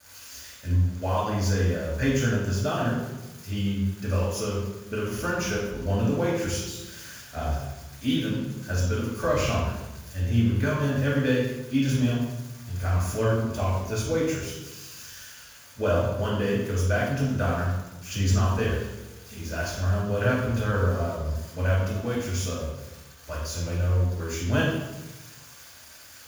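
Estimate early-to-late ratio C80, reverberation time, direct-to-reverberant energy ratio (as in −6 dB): 3.0 dB, 1.1 s, −6.5 dB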